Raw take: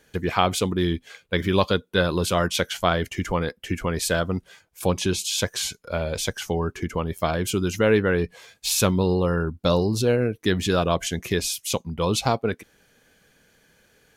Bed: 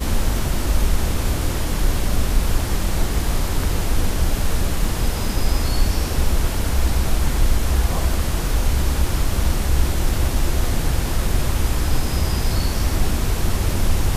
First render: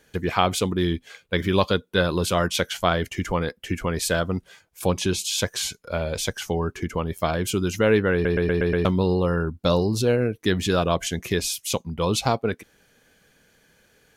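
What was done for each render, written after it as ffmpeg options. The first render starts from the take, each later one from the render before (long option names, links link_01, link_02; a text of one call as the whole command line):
ffmpeg -i in.wav -filter_complex "[0:a]asplit=7[link_01][link_02][link_03][link_04][link_05][link_06][link_07];[link_01]atrim=end=8.252[link_08];[link_02]atrim=start=8.128:end=8.252[link_09];[link_03]atrim=start=8.128:end=8.252[link_10];[link_04]atrim=start=8.128:end=8.252[link_11];[link_05]atrim=start=8.128:end=8.252[link_12];[link_06]atrim=start=8.128:end=8.252[link_13];[link_07]atrim=start=8.848[link_14];[link_08][link_09]acrossfade=duration=0.004:curve1=hsin:curve2=hsin[link_15];[link_15][link_10]acrossfade=duration=0.004:curve1=hsin:curve2=hsin[link_16];[link_16][link_11]acrossfade=duration=0.004:curve1=hsin:curve2=hsin[link_17];[link_17][link_12]acrossfade=duration=0.004:curve1=hsin:curve2=hsin[link_18];[link_18][link_13]acrossfade=duration=0.004:curve1=hsin:curve2=hsin[link_19];[link_19][link_14]acrossfade=duration=0.004:curve1=hsin:curve2=hsin" out.wav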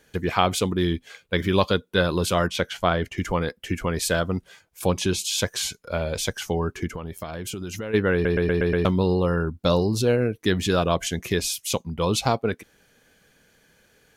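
ffmpeg -i in.wav -filter_complex "[0:a]asettb=1/sr,asplit=3[link_01][link_02][link_03];[link_01]atrim=end=2.474[link_04];[link_02]atrim=start=2.47:end=3.18,asetpts=PTS-STARTPTS,afade=type=in:duration=0.004:curve=qsin,afade=type=out:start_time=0.706:duration=0.004:curve=qsin,highshelf=frequency=4800:gain=-10.5[link_05];[link_03]atrim=start=3.176[link_06];[link_04][link_05]acrossfade=duration=0.004:curve1=hsin:curve2=qsin[link_07];[link_07][link_06]acrossfade=duration=0.004:curve1=qsin:curve2=hsin,asplit=3[link_08][link_09][link_10];[link_08]afade=type=out:start_time=6.92:duration=0.02[link_11];[link_09]acompressor=threshold=-28dB:ratio=10:attack=3.2:release=140:knee=1:detection=peak,afade=type=in:start_time=6.92:duration=0.02,afade=type=out:start_time=7.93:duration=0.02[link_12];[link_10]afade=type=in:start_time=7.93:duration=0.02[link_13];[link_11][link_12][link_13]amix=inputs=3:normalize=0" out.wav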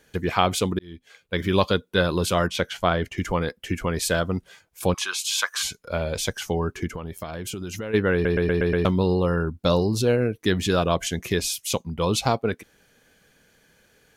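ffmpeg -i in.wav -filter_complex "[0:a]asettb=1/sr,asplit=3[link_01][link_02][link_03];[link_01]atrim=end=4.944[link_04];[link_02]atrim=start=4.94:end=5.63,asetpts=PTS-STARTPTS,afade=type=in:duration=0.004:curve=qsin,afade=type=out:start_time=0.686:duration=0.004:curve=qsin,highpass=frequency=1200:width_type=q:width=4.6[link_05];[link_03]atrim=start=5.626[link_06];[link_04][link_05]acrossfade=duration=0.004:curve1=hsin:curve2=qsin[link_07];[link_07][link_06]acrossfade=duration=0.004:curve1=qsin:curve2=hsin,asplit=2[link_08][link_09];[link_08]atrim=end=0.79,asetpts=PTS-STARTPTS,afade=type=out:start_time=0.786:duration=0.004:curve=hsin[link_10];[link_09]atrim=start=0.79,asetpts=PTS-STARTPTS,afade=type=in:duration=0.75[link_11];[link_10][link_11]concat=n=2:v=0:a=1" out.wav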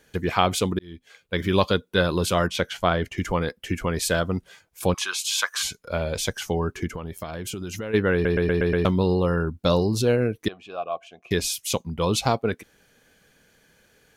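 ffmpeg -i in.wav -filter_complex "[0:a]asettb=1/sr,asplit=3[link_01][link_02][link_03];[link_01]atrim=end=10.484[link_04];[link_02]atrim=start=10.48:end=11.31,asetpts=PTS-STARTPTS,afade=type=in:duration=0.004:curve=qsin,afade=type=out:start_time=0.826:duration=0.004:curve=qsin,asplit=3[link_05][link_06][link_07];[link_05]bandpass=frequency=730:width_type=q:width=8,volume=0dB[link_08];[link_06]bandpass=frequency=1090:width_type=q:width=8,volume=-6dB[link_09];[link_07]bandpass=frequency=2440:width_type=q:width=8,volume=-9dB[link_10];[link_08][link_09][link_10]amix=inputs=3:normalize=0[link_11];[link_03]atrim=start=11.306[link_12];[link_04][link_11]acrossfade=duration=0.004:curve1=hsin:curve2=qsin[link_13];[link_13][link_12]acrossfade=duration=0.004:curve1=qsin:curve2=hsin" out.wav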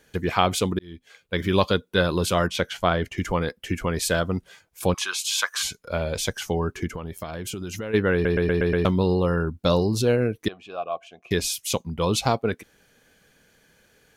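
ffmpeg -i in.wav -af anull out.wav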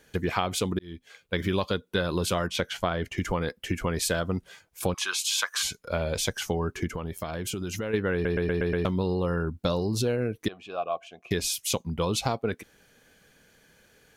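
ffmpeg -i in.wav -af "acompressor=threshold=-23dB:ratio=6" out.wav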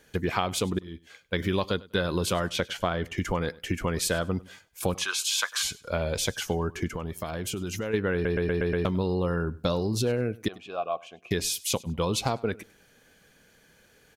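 ffmpeg -i in.wav -af "aecho=1:1:99|198:0.0794|0.0183" out.wav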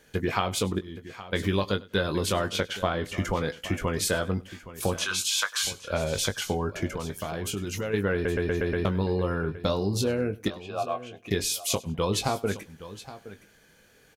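ffmpeg -i in.wav -filter_complex "[0:a]asplit=2[link_01][link_02];[link_02]adelay=20,volume=-8dB[link_03];[link_01][link_03]amix=inputs=2:normalize=0,aecho=1:1:818:0.168" out.wav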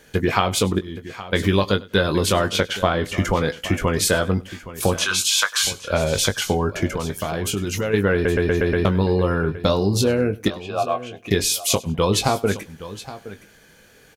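ffmpeg -i in.wav -af "volume=7.5dB" out.wav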